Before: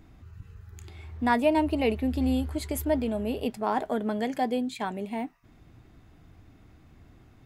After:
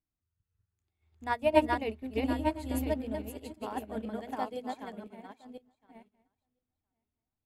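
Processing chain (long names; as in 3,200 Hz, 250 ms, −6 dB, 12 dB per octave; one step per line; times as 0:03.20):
feedback delay that plays each chunk backwards 507 ms, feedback 40%, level −0.5 dB
mains-hum notches 60/120/180/240/300/360/420 Hz
expander for the loud parts 2.5 to 1, over −43 dBFS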